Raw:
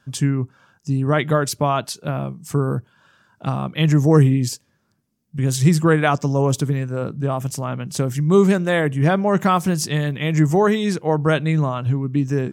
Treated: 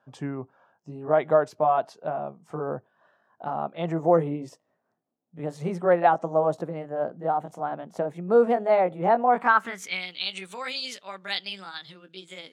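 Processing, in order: gliding pitch shift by +4.5 st starting unshifted; band-pass sweep 700 Hz -> 3800 Hz, 9.25–10.18; gain +4 dB

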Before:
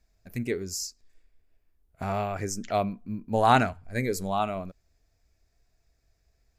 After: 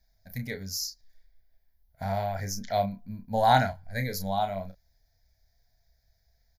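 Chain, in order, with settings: high shelf 5900 Hz +10 dB; fixed phaser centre 1800 Hz, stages 8; doubler 31 ms -7.5 dB

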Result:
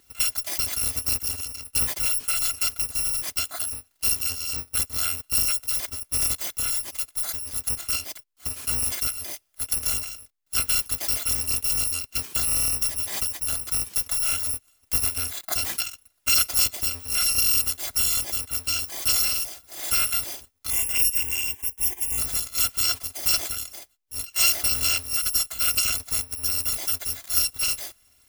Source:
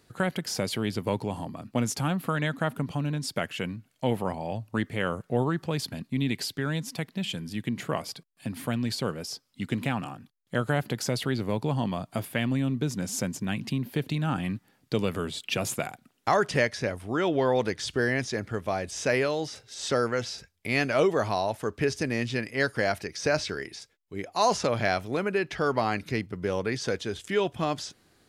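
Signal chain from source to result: FFT order left unsorted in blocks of 256 samples; 20.7–22.18 fixed phaser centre 880 Hz, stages 8; gain +3 dB

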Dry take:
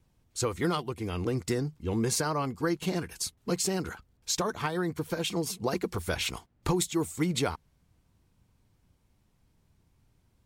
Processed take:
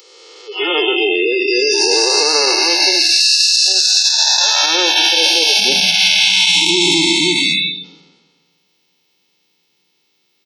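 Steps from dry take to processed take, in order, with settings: time blur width 0.857 s; upward compressor, threshold -54 dBFS; spectral noise reduction 29 dB; steep high-pass 390 Hz 36 dB/oct, from 5.58 s 190 Hz; compressor 2.5:1, threshold -47 dBFS, peak gain reduction 7.5 dB; band shelf 3600 Hz +15.5 dB; notch 2400 Hz, Q 9.3; speakerphone echo 0.16 s, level -27 dB; reverb RT60 0.90 s, pre-delay 25 ms, DRR 15.5 dB; spectral gate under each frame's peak -30 dB strong; maximiser +29 dB; gain -1.5 dB

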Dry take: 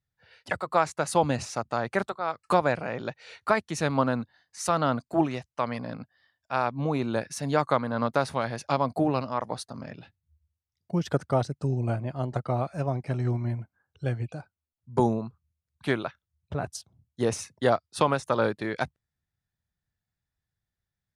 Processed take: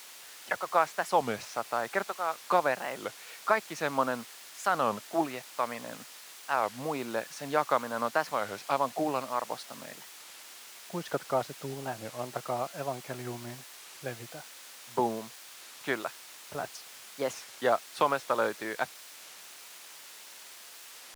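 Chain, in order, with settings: high shelf 4200 Hz -11 dB; in parallel at -6.5 dB: requantised 6-bit, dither triangular; on the sum: weighting filter A; record warp 33 1/3 rpm, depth 250 cents; gain -4 dB

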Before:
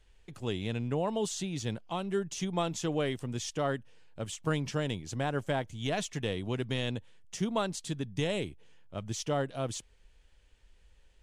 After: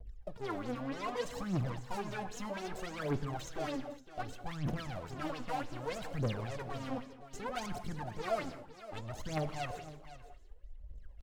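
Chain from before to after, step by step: median filter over 41 samples; limiter -30 dBFS, peak gain reduction 8 dB; rotary speaker horn 7 Hz, later 1.1 Hz, at 5.5; pitch shift +1.5 st; tube stage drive 50 dB, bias 0.8; phaser 0.64 Hz, delay 4.4 ms, feedback 79%; vibrato 1.3 Hz 20 cents; on a send: echo 0.509 s -14 dB; on the sum: non-linear reverb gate 0.24 s flat, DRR 9.5 dB; LFO bell 3.6 Hz 600–7200 Hz +11 dB; gain +8 dB

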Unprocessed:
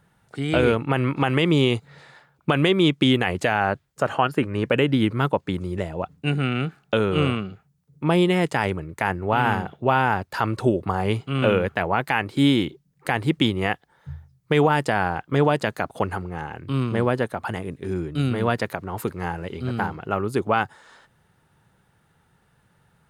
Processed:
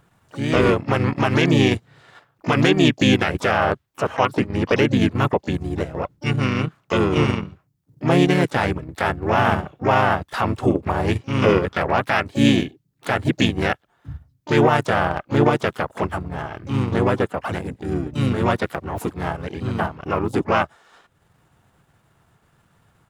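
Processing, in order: harmoniser -4 st -1 dB, +4 st -16 dB, +12 st -13 dB; transient shaper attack -3 dB, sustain -7 dB; gain +1 dB

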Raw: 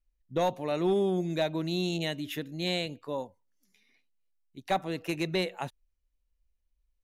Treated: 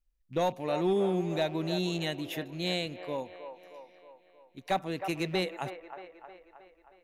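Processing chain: rattling part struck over -40 dBFS, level -44 dBFS; band-limited delay 0.314 s, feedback 56%, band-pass 940 Hz, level -7.5 dB; gain -1 dB

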